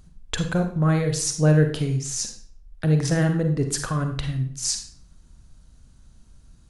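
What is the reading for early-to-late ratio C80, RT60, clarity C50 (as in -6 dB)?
11.0 dB, 0.55 s, 7.0 dB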